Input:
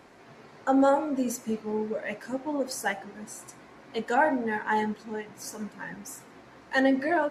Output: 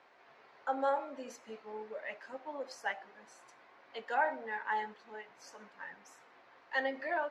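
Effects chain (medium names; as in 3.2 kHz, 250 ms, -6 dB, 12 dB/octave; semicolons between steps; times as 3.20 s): three-band isolator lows -19 dB, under 490 Hz, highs -22 dB, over 4.9 kHz; trim -6.5 dB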